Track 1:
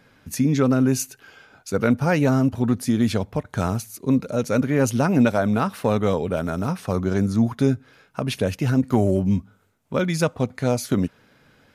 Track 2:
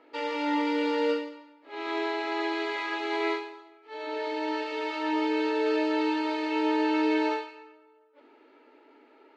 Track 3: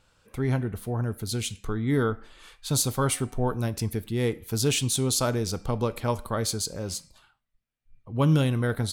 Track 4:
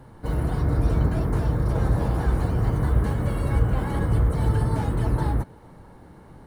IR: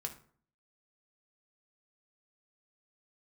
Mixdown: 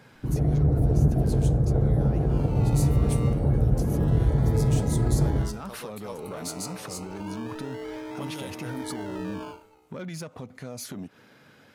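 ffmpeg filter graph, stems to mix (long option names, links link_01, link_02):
-filter_complex "[0:a]acompressor=threshold=-21dB:ratio=6,alimiter=level_in=2.5dB:limit=-24dB:level=0:latency=1:release=128,volume=-2.5dB,asoftclip=type=tanh:threshold=-29.5dB,volume=1.5dB[link_01];[1:a]acrusher=samples=21:mix=1:aa=0.000001:lfo=1:lforange=12.6:lforate=0.28,lowpass=frequency=2000:poles=1,adelay=2150,volume=-10dB[link_02];[2:a]bass=frequency=250:gain=-12,treble=frequency=4000:gain=10,volume=-13.5dB,asplit=2[link_03][link_04];[link_04]volume=-14dB[link_05];[3:a]afwtdn=0.0708,volume=3dB,asplit=2[link_06][link_07];[link_07]volume=-3.5dB[link_08];[link_01][link_03][link_06]amix=inputs=3:normalize=0,highpass=110,acompressor=threshold=-31dB:ratio=6,volume=0dB[link_09];[4:a]atrim=start_sample=2205[link_10];[link_05][link_08]amix=inputs=2:normalize=0[link_11];[link_11][link_10]afir=irnorm=-1:irlink=0[link_12];[link_02][link_09][link_12]amix=inputs=3:normalize=0"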